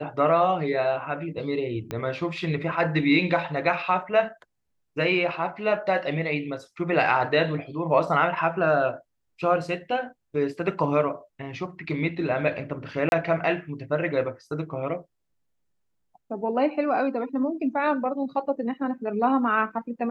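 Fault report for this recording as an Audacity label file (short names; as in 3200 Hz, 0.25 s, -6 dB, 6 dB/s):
1.910000	1.910000	pop -17 dBFS
13.090000	13.120000	gap 31 ms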